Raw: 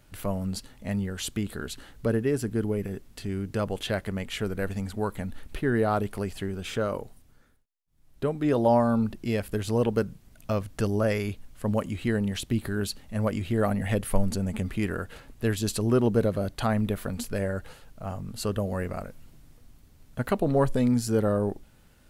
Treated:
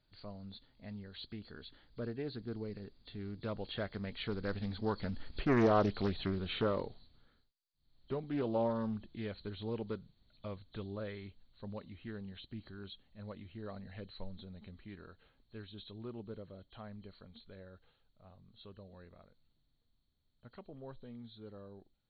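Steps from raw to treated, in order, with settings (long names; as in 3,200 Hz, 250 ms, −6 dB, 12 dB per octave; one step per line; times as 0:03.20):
hearing-aid frequency compression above 3,100 Hz 4 to 1
source passing by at 0:05.88, 11 m/s, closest 11 metres
highs frequency-modulated by the lows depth 0.53 ms
level −3 dB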